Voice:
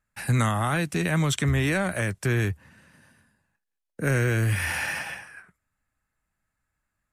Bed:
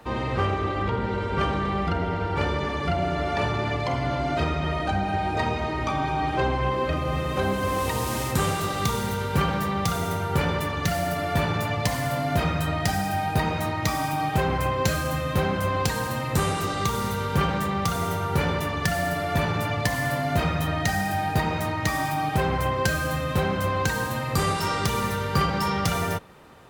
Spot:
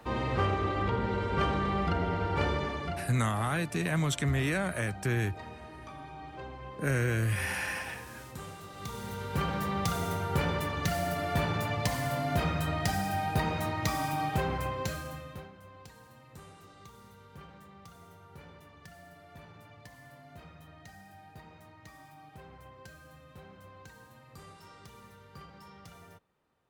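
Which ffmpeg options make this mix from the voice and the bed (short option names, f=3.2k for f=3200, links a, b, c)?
-filter_complex "[0:a]adelay=2800,volume=-5.5dB[a];[1:a]volume=10dB,afade=t=out:st=2.51:d=0.63:silence=0.16788,afade=t=in:st=8.71:d=1.04:silence=0.199526,afade=t=out:st=14.2:d=1.31:silence=0.0841395[b];[a][b]amix=inputs=2:normalize=0"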